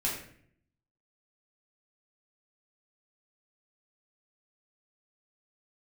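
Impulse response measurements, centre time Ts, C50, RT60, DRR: 40 ms, 4.5 dB, 0.60 s, −5.0 dB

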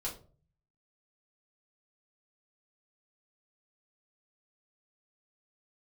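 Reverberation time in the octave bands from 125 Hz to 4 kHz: 0.85, 0.55, 0.50, 0.35, 0.25, 0.25 seconds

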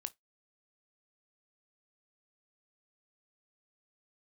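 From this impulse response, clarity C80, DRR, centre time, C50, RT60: 39.5 dB, 12.0 dB, 2 ms, 27.0 dB, non-exponential decay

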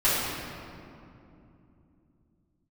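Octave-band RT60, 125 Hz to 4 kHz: 4.4, 4.4, 3.0, 2.5, 2.0, 1.5 seconds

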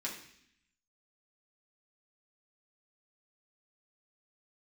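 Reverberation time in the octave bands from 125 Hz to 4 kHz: 0.95, 0.95, 0.70, 0.65, 0.90, 0.85 seconds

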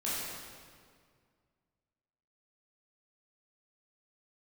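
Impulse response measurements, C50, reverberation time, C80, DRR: −2.5 dB, 2.0 s, −0.5 dB, −9.0 dB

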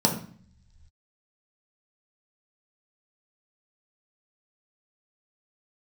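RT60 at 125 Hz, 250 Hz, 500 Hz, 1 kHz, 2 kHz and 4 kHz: 1.9, 0.90, 0.50, 0.50, 0.60, 1.6 seconds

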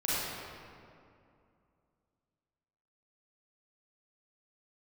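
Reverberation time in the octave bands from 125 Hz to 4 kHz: 2.9, 2.9, 2.5, 2.4, 1.9, 1.4 seconds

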